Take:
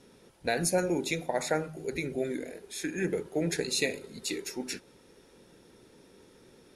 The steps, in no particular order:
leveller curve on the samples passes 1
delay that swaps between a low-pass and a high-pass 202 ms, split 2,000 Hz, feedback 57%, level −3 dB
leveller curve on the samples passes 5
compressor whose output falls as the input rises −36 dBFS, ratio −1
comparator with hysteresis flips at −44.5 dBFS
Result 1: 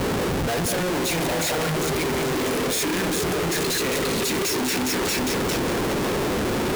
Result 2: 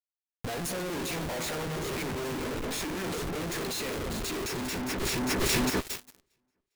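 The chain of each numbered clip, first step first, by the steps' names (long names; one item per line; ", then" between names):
first leveller curve on the samples, then compressor whose output falls as the input rises, then delay that swaps between a low-pass and a high-pass, then second leveller curve on the samples, then comparator with hysteresis
comparator with hysteresis, then delay that swaps between a low-pass and a high-pass, then second leveller curve on the samples, then compressor whose output falls as the input rises, then first leveller curve on the samples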